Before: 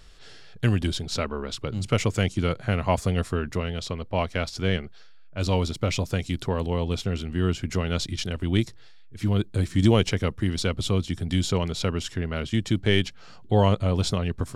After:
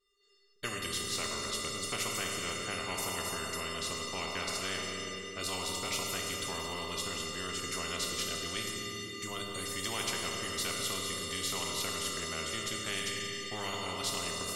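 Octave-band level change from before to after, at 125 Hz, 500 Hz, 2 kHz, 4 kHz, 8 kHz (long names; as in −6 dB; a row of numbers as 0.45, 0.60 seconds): −22.0, −12.0, −3.0, −2.0, +4.0 decibels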